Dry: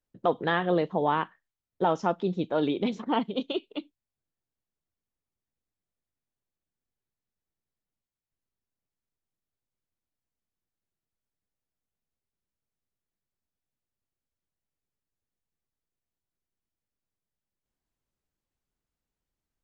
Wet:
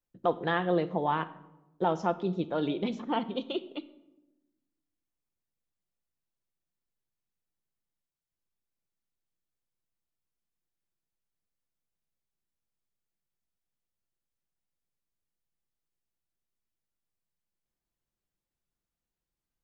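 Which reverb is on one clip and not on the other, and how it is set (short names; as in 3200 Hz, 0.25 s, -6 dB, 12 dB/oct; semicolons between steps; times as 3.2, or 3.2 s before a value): shoebox room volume 3900 m³, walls furnished, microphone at 0.83 m; gain -3.5 dB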